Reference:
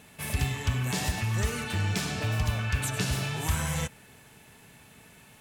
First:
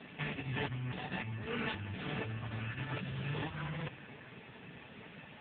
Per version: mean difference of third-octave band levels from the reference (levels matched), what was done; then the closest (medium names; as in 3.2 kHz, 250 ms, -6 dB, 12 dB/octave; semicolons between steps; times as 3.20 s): 12.0 dB: high-pass 92 Hz 12 dB/octave; compressor with a negative ratio -37 dBFS, ratio -1; trim +1.5 dB; AMR-NB 5.9 kbps 8 kHz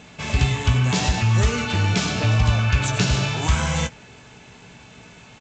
4.5 dB: band-stop 1.8 kHz, Q 12; doubling 17 ms -8.5 dB; trim +8.5 dB; G.722 64 kbps 16 kHz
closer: second